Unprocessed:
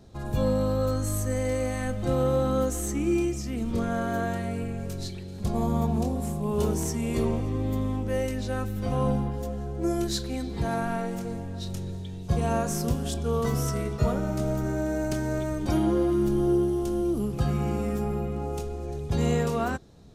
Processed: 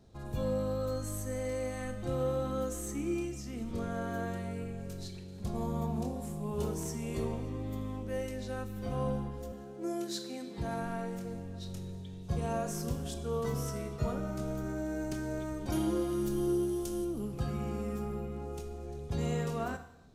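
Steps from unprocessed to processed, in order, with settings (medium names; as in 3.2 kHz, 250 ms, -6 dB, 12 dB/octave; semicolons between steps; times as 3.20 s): 9.52–10.58 s: high-pass 180 Hz 24 dB/octave; 15.72–17.05 s: treble shelf 3.4 kHz +11 dB; Schroeder reverb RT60 0.81 s, combs from 25 ms, DRR 9 dB; trim -8.5 dB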